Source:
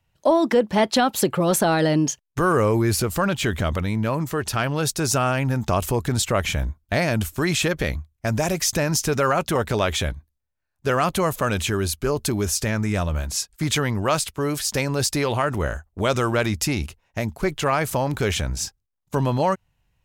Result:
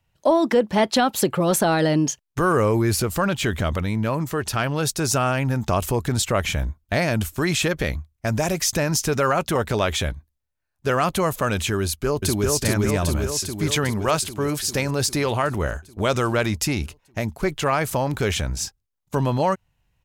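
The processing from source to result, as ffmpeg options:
ffmpeg -i in.wav -filter_complex "[0:a]asplit=2[link_01][link_02];[link_02]afade=type=in:start_time=11.82:duration=0.01,afade=type=out:start_time=12.5:duration=0.01,aecho=0:1:400|800|1200|1600|2000|2400|2800|3200|3600|4000|4400|4800:0.841395|0.588977|0.412284|0.288599|0.202019|0.141413|0.0989893|0.0692925|0.0485048|0.0339533|0.0237673|0.0166371[link_03];[link_01][link_03]amix=inputs=2:normalize=0" out.wav

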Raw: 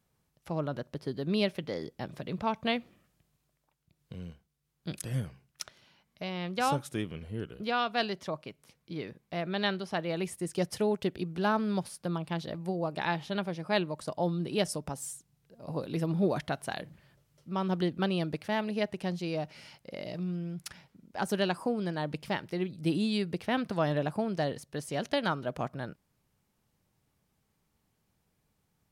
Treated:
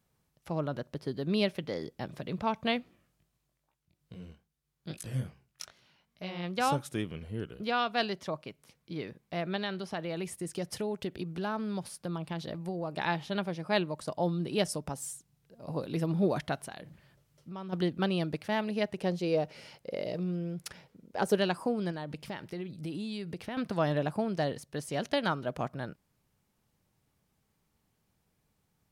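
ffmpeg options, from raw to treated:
ffmpeg -i in.wav -filter_complex "[0:a]asplit=3[link_01][link_02][link_03];[link_01]afade=type=out:start_time=2.79:duration=0.02[link_04];[link_02]flanger=delay=16.5:depth=7.1:speed=2.4,afade=type=in:start_time=2.79:duration=0.02,afade=type=out:start_time=6.42:duration=0.02[link_05];[link_03]afade=type=in:start_time=6.42:duration=0.02[link_06];[link_04][link_05][link_06]amix=inputs=3:normalize=0,asettb=1/sr,asplit=3[link_07][link_08][link_09];[link_07]atrim=end=9.564[link_10];[link_08]atrim=start=9.56:end=12.97,asetpts=PTS-STARTPTS,afade=type=in:duration=0.004:curve=qsin,afade=type=out:start_time=3.406:duration=0.004:curve=qsin,acompressor=threshold=-32dB:ratio=2.5:attack=3.2:release=140:knee=1:detection=peak[link_11];[link_09]atrim=start=12.966[link_12];[link_10][link_11]acrossfade=duration=0.004:curve1=hsin:curve2=qsin[link_13];[link_13][link_12]acrossfade=duration=0.004:curve1=qsin:curve2=hsin,asplit=3[link_14][link_15][link_16];[link_14]afade=type=out:start_time=16.65:duration=0.02[link_17];[link_15]acompressor=threshold=-41dB:ratio=3:attack=3.2:release=140:knee=1:detection=peak,afade=type=in:start_time=16.65:duration=0.02,afade=type=out:start_time=17.72:duration=0.02[link_18];[link_16]afade=type=in:start_time=17.72:duration=0.02[link_19];[link_17][link_18][link_19]amix=inputs=3:normalize=0,asettb=1/sr,asplit=3[link_20][link_21][link_22];[link_20]atrim=end=18.984[link_23];[link_21]atrim=start=18.98:end=21.38,asetpts=PTS-STARTPTS,afade=type=in:duration=0.004:curve=qsin,afade=type=out:start_time=2.396:duration=0.004:curve=qsin,equalizer=frequency=470:width_type=o:width=0.7:gain=9.5[link_24];[link_22]atrim=start=21.376[link_25];[link_23][link_24]acrossfade=duration=0.004:curve1=hsin:curve2=qsin[link_26];[link_26][link_25]acrossfade=duration=0.004:curve1=qsin:curve2=hsin,asettb=1/sr,asplit=3[link_27][link_28][link_29];[link_27]atrim=end=21.914[link_30];[link_28]atrim=start=21.91:end=23.57,asetpts=PTS-STARTPTS,afade=type=in:duration=0.004:curve=qsin,afade=type=out:start_time=1.656:duration=0.004:curve=qsin,acompressor=threshold=-34dB:ratio=6:attack=3.2:release=140:knee=1:detection=peak[link_31];[link_29]atrim=start=23.566[link_32];[link_30][link_31]acrossfade=duration=0.004:curve1=hsin:curve2=qsin[link_33];[link_33][link_32]acrossfade=duration=0.004:curve1=qsin:curve2=hsin" out.wav

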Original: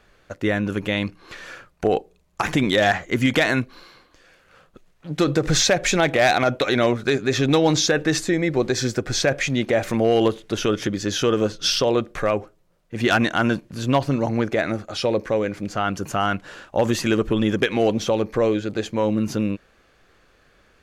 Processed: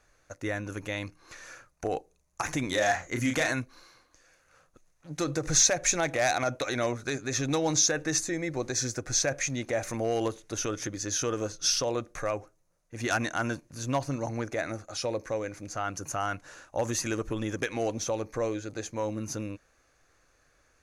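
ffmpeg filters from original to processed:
ffmpeg -i in.wav -filter_complex "[0:a]asettb=1/sr,asplit=3[link_01][link_02][link_03];[link_01]atrim=end=2.674[link_04];[link_02]atrim=start=2.67:end=3.53,asetpts=PTS-STARTPTS,afade=type=in:duration=0.004:curve=qsin,afade=type=out:start_time=0.856:duration=0.004:curve=qsin,asplit=2[link_05][link_06];[link_06]adelay=34,volume=-5dB[link_07];[link_05][link_07]amix=inputs=2:normalize=0,atrim=end_sample=37926[link_08];[link_03]atrim=start=3.526[link_09];[link_04][link_08]acrossfade=duration=0.004:curve1=hsin:curve2=qsin[link_10];[link_10][link_09]acrossfade=duration=0.004:curve1=qsin:curve2=hsin,equalizer=frequency=200:width_type=o:width=0.33:gain=-11,equalizer=frequency=400:width_type=o:width=0.33:gain=-6,equalizer=frequency=3150:width_type=o:width=0.33:gain=-8,equalizer=frequency=6300:width_type=o:width=0.33:gain=12,equalizer=frequency=10000:width_type=o:width=0.33:gain=9,volume=-8.5dB" out.wav

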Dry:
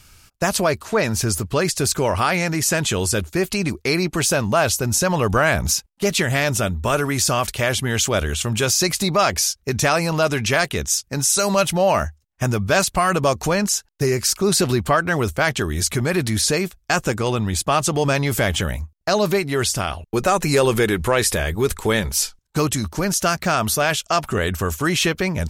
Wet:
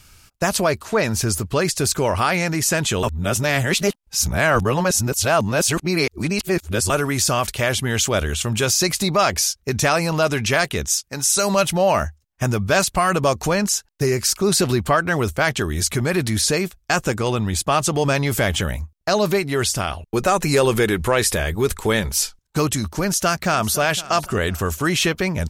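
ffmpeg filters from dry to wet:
ffmpeg -i in.wav -filter_complex "[0:a]asettb=1/sr,asplit=3[link_01][link_02][link_03];[link_01]atrim=end=10.884[link_04];[link_02]atrim=start=10.88:end=11.3,asetpts=PTS-STARTPTS,afade=type=in:duration=0.004:curve=qsin,afade=type=out:start_time=0.416:duration=0.004:curve=qsin,lowshelf=frequency=410:gain=-8[link_05];[link_03]atrim=start=11.296[link_06];[link_04][link_05]acrossfade=duration=0.004:curve1=hsin:curve2=qsin[link_07];[link_07][link_06]acrossfade=duration=0.004:curve1=qsin:curve2=hsin,asplit=2[link_08][link_09];[link_09]afade=type=in:start_time=23:duration=0.01,afade=type=out:start_time=23.75:duration=0.01,aecho=0:1:510|1020|1530:0.125893|0.0440624|0.0154218[link_10];[link_08][link_10]amix=inputs=2:normalize=0,asplit=3[link_11][link_12][link_13];[link_11]atrim=end=3.032[link_14];[link_12]atrim=start=3.028:end=6.902,asetpts=PTS-STARTPTS,areverse[link_15];[link_13]atrim=start=6.898[link_16];[link_14][link_15]acrossfade=duration=0.004:curve1=hsin:curve2=hsin[link_17];[link_17][link_16]acrossfade=duration=0.004:curve1=hsin:curve2=hsin" out.wav

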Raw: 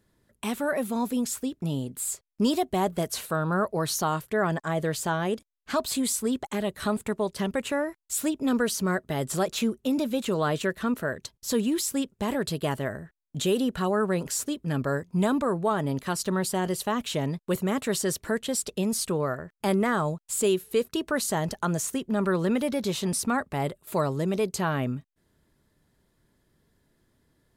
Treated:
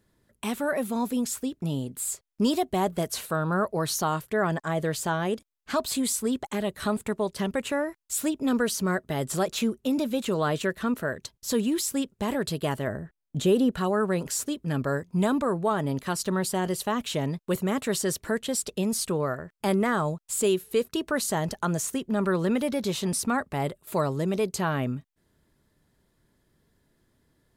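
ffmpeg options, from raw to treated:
ffmpeg -i in.wav -filter_complex "[0:a]asettb=1/sr,asplit=3[link_01][link_02][link_03];[link_01]atrim=end=12.874[link_04];[link_02]atrim=start=12.87:end=13.72,asetpts=PTS-STARTPTS,afade=type=in:duration=0.004:curve=qsin,afade=type=out:start_time=0.846:duration=0.004:curve=qsin,tiltshelf=frequency=1200:gain=4[link_05];[link_03]atrim=start=13.716[link_06];[link_04][link_05]acrossfade=duration=0.004:curve1=hsin:curve2=qsin[link_07];[link_07][link_06]acrossfade=duration=0.004:curve1=qsin:curve2=hsin" out.wav

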